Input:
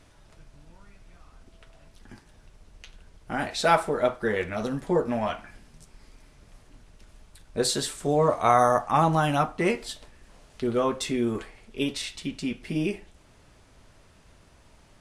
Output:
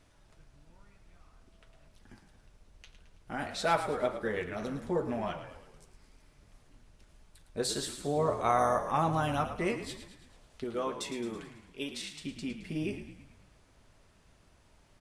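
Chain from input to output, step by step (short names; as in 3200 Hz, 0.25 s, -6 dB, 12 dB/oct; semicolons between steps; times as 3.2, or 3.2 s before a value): 10.64–12.19 low shelf 210 Hz -12 dB; on a send: frequency-shifting echo 0.109 s, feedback 54%, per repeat -43 Hz, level -10.5 dB; on the sum: gain -7.5 dB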